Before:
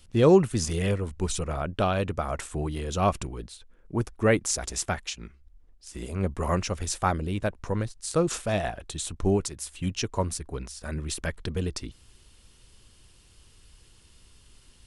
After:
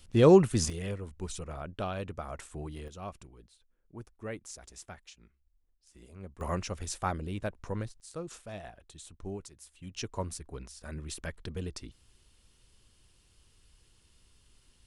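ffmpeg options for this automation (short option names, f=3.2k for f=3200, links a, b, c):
-af "asetnsamples=n=441:p=0,asendcmd='0.7 volume volume -10dB;2.88 volume volume -18dB;6.41 volume volume -7dB;8 volume volume -16dB;9.94 volume volume -8dB',volume=-1dB"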